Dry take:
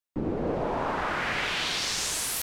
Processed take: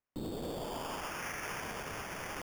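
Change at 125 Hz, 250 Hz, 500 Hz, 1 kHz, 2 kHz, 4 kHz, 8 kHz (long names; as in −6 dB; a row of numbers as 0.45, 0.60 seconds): −9.0, −10.0, −10.0, −10.0, −11.0, −16.5, −15.5 decibels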